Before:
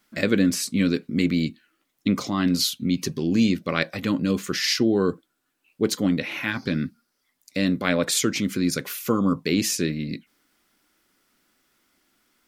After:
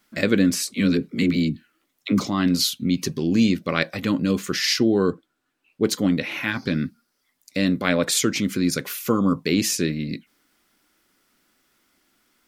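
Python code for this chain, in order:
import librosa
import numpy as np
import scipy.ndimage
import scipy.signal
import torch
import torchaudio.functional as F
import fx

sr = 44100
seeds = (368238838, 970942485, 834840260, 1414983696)

y = fx.dispersion(x, sr, late='lows', ms=61.0, hz=370.0, at=(0.63, 2.26))
y = fx.high_shelf(y, sr, hz=6700.0, db=-10.5, at=(5.1, 5.84))
y = y * librosa.db_to_amplitude(1.5)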